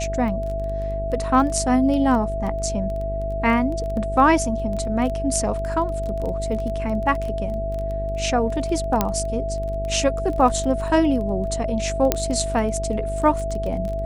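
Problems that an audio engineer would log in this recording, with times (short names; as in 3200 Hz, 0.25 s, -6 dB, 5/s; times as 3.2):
buzz 50 Hz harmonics 12 -28 dBFS
crackle 13/s -27 dBFS
tone 660 Hz -26 dBFS
9.01 pop -4 dBFS
12.12 pop -2 dBFS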